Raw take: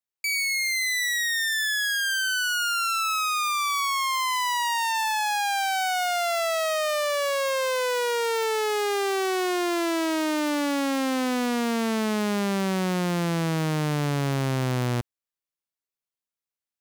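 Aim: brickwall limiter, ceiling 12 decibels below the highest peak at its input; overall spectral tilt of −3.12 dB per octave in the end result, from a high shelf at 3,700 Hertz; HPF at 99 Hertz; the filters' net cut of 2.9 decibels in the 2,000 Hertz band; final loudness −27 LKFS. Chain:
high-pass filter 99 Hz
parametric band 2,000 Hz −5 dB
high-shelf EQ 3,700 Hz +5.5 dB
level +6.5 dB
brickwall limiter −17 dBFS

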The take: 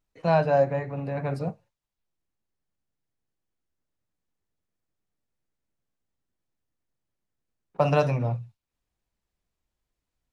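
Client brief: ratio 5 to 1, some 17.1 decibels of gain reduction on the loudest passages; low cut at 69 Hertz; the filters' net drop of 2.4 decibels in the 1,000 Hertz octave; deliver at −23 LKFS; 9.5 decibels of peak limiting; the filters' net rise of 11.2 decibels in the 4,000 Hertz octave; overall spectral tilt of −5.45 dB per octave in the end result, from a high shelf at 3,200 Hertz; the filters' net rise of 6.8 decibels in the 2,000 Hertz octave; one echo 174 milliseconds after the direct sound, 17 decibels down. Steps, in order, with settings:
high-pass filter 69 Hz
parametric band 1,000 Hz −6 dB
parametric band 2,000 Hz +7.5 dB
high-shelf EQ 3,200 Hz +6 dB
parametric band 4,000 Hz +7.5 dB
downward compressor 5 to 1, threshold −37 dBFS
brickwall limiter −31 dBFS
single-tap delay 174 ms −17 dB
level +18.5 dB

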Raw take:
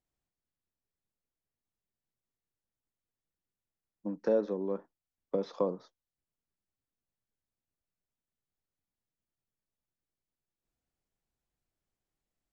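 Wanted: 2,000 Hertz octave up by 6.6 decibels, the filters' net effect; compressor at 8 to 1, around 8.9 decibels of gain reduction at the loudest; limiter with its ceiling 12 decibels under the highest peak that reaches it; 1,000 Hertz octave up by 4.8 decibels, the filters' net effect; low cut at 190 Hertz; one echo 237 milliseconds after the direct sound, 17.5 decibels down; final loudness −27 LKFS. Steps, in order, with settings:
high-pass filter 190 Hz
parametric band 1,000 Hz +4 dB
parametric band 2,000 Hz +7.5 dB
downward compressor 8 to 1, threshold −31 dBFS
brickwall limiter −30.5 dBFS
single-tap delay 237 ms −17.5 dB
level +15.5 dB

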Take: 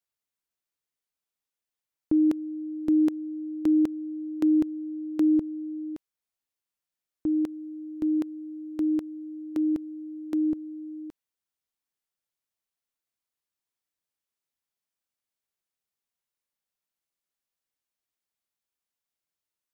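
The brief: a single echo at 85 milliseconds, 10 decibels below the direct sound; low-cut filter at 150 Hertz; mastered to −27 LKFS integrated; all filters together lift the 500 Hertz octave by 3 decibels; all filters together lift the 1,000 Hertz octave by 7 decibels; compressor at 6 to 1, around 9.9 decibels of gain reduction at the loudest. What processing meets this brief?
high-pass filter 150 Hz
parametric band 500 Hz +7 dB
parametric band 1,000 Hz +6.5 dB
downward compressor 6 to 1, threshold −27 dBFS
single-tap delay 85 ms −10 dB
level +5 dB

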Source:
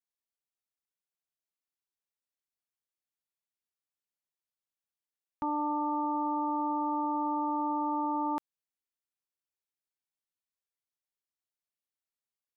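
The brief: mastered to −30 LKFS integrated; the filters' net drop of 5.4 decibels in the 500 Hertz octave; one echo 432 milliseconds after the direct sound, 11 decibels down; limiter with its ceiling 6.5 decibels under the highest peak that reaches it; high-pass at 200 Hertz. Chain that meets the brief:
high-pass filter 200 Hz
parametric band 500 Hz −7 dB
brickwall limiter −31.5 dBFS
single-tap delay 432 ms −11 dB
level +8.5 dB

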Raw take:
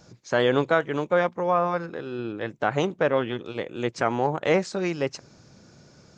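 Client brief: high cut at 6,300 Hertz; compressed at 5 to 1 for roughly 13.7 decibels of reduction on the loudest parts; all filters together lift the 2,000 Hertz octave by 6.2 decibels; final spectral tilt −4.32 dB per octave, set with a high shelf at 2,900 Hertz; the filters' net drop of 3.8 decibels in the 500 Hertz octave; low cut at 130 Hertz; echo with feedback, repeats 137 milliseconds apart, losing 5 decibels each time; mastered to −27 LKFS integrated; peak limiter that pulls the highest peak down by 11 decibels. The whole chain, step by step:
high-pass filter 130 Hz
low-pass filter 6,300 Hz
parametric band 500 Hz −5 dB
parametric band 2,000 Hz +7 dB
high-shelf EQ 2,900 Hz +4.5 dB
downward compressor 5 to 1, threshold −32 dBFS
brickwall limiter −24.5 dBFS
repeating echo 137 ms, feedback 56%, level −5 dB
level +9.5 dB

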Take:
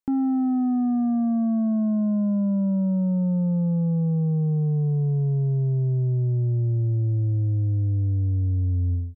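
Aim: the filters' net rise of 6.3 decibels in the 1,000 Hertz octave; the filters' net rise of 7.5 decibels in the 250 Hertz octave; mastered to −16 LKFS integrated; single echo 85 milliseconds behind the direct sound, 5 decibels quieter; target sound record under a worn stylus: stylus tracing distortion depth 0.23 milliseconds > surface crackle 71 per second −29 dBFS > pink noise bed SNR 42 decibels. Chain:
parametric band 250 Hz +9 dB
parametric band 1,000 Hz +9 dB
single-tap delay 85 ms −5 dB
stylus tracing distortion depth 0.23 ms
surface crackle 71 per second −29 dBFS
pink noise bed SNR 42 dB
level +0.5 dB

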